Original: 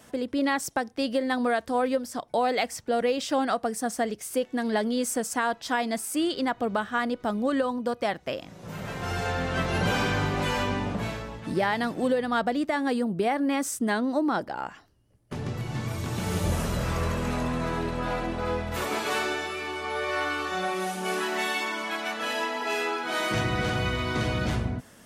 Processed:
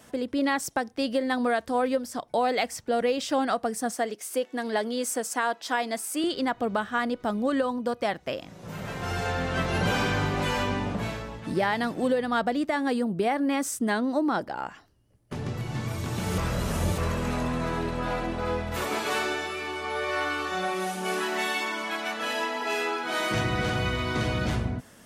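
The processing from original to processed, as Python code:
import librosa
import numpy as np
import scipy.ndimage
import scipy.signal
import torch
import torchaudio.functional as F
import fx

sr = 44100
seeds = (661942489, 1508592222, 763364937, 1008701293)

y = fx.highpass(x, sr, hz=290.0, slope=12, at=(3.92, 6.24))
y = fx.edit(y, sr, fx.reverse_span(start_s=16.38, length_s=0.6), tone=tone)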